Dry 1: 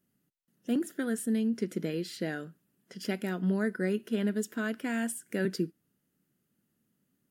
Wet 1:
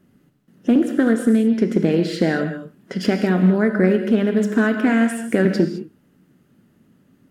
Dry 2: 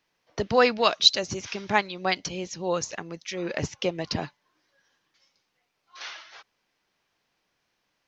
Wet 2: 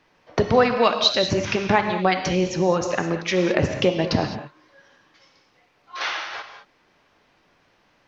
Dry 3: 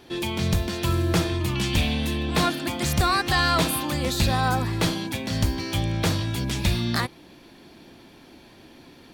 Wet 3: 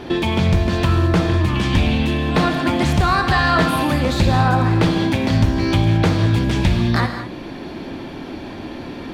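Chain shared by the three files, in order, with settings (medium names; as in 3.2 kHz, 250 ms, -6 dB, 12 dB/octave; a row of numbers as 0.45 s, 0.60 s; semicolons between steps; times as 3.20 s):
low-pass 1.7 kHz 6 dB/octave; compression 2.5:1, threshold -37 dBFS; gated-style reverb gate 240 ms flat, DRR 5.5 dB; loudspeaker Doppler distortion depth 0.15 ms; peak normalisation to -3 dBFS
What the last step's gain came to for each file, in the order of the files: +20.5 dB, +16.5 dB, +18.0 dB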